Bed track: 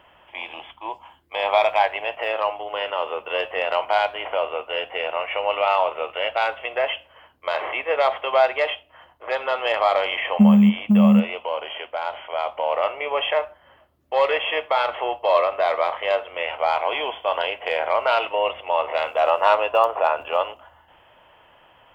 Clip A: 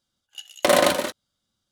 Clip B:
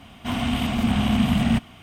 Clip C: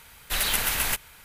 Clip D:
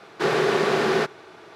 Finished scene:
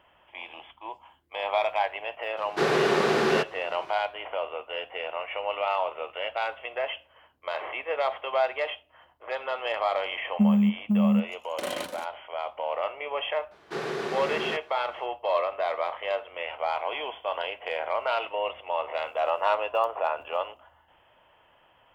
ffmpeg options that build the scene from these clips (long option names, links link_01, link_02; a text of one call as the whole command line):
ffmpeg -i bed.wav -i cue0.wav -i cue1.wav -i cue2.wav -i cue3.wav -filter_complex "[4:a]asplit=2[link_01][link_02];[0:a]volume=-7.5dB[link_03];[link_01]atrim=end=1.55,asetpts=PTS-STARTPTS,volume=-2dB,afade=type=in:duration=0.004:curve=hsin,afade=type=out:start_time=1.546:duration=0.004:curve=hsin,adelay=2370[link_04];[1:a]atrim=end=1.71,asetpts=PTS-STARTPTS,volume=-15.5dB,afade=type=in:duration=0.004:curve=hsin,afade=type=out:start_time=1.706:duration=0.004:curve=hsin,adelay=10940[link_05];[link_02]atrim=end=1.55,asetpts=PTS-STARTPTS,volume=-10.5dB,afade=type=in:duration=0.004:curve=hsin,afade=type=out:start_time=1.546:duration=0.004:curve=hsin,adelay=13510[link_06];[link_03][link_04][link_05][link_06]amix=inputs=4:normalize=0" out.wav